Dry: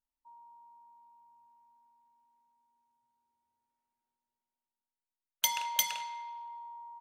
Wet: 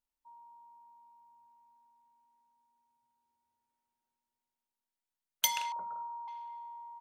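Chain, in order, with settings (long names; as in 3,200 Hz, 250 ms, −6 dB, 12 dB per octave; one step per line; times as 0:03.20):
0:05.72–0:06.28: Chebyshev low-pass with heavy ripple 1,400 Hz, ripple 3 dB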